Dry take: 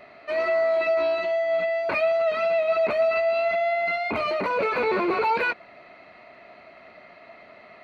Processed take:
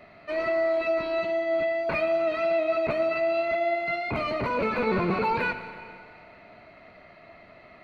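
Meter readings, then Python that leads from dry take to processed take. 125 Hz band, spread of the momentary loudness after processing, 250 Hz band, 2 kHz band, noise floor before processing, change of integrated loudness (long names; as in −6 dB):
can't be measured, 5 LU, +3.0 dB, −3.0 dB, −50 dBFS, −2.5 dB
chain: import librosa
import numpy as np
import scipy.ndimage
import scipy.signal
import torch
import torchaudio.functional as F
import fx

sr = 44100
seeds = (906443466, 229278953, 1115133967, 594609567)

y = fx.octave_divider(x, sr, octaves=1, level_db=3.0)
y = fx.rev_schroeder(y, sr, rt60_s=2.2, comb_ms=32, drr_db=9.5)
y = y * librosa.db_to_amplitude(-3.5)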